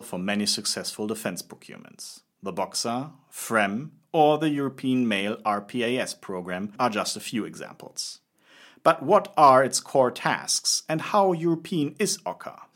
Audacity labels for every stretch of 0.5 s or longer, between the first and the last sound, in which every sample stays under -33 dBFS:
8.140000	8.850000	silence